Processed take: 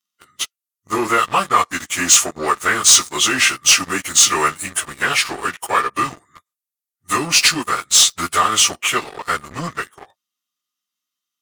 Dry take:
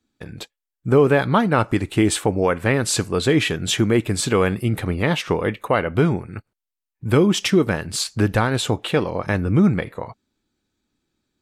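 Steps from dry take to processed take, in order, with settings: frequency-domain pitch shifter -3.5 st; in parallel at -3.5 dB: saturation -15 dBFS, distortion -13 dB; on the sum: differentiator; waveshaping leveller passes 3; peaking EQ 1.2 kHz +11 dB 0.22 oct; trim +6.5 dB

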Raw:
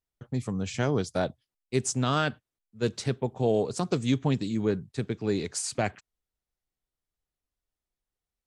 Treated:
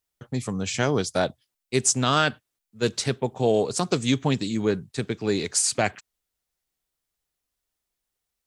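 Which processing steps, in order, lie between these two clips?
tilt EQ +1.5 dB/octave; trim +5.5 dB

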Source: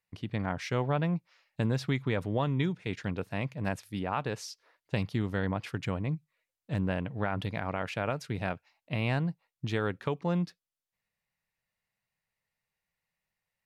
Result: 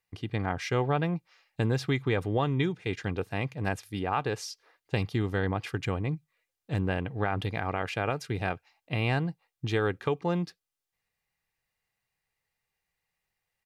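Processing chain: comb 2.5 ms, depth 37%; trim +2.5 dB

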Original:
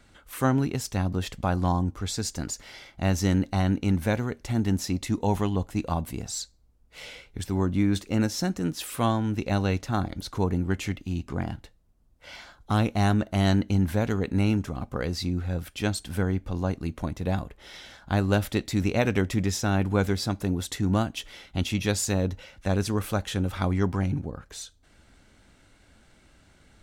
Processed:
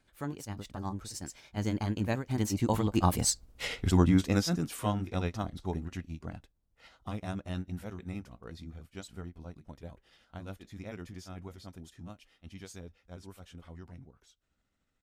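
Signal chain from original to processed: Doppler pass-by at 6.26 s, 28 m/s, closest 15 m; granular stretch 0.56×, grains 146 ms; trim +9 dB

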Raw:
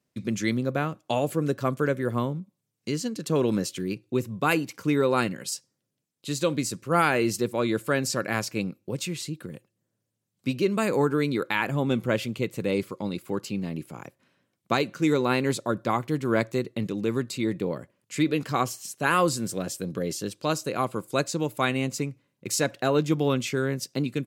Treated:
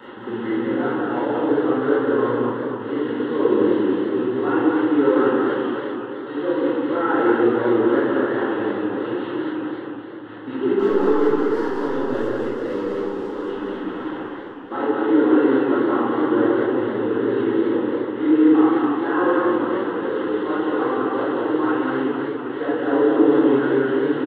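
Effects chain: one-bit delta coder 16 kbps, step -30.5 dBFS; gate with hold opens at -33 dBFS; high-pass 200 Hz 12 dB/octave; peaking EQ 1.2 kHz -8.5 dB 0.28 oct; 10.79–13.45 s: power-law waveshaper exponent 1.4; static phaser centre 640 Hz, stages 6; delay 187 ms -3 dB; reverberation RT60 0.90 s, pre-delay 4 ms, DRR -8.5 dB; modulated delay 256 ms, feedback 68%, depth 133 cents, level -8 dB

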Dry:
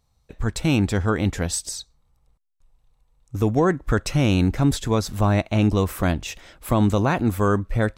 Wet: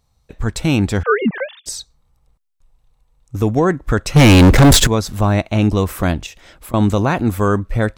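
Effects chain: 1.03–1.66 s: formants replaced by sine waves; 4.16–4.87 s: waveshaping leveller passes 5; 6.26–6.74 s: compression 16:1, threshold -38 dBFS, peak gain reduction 22.5 dB; trim +4 dB

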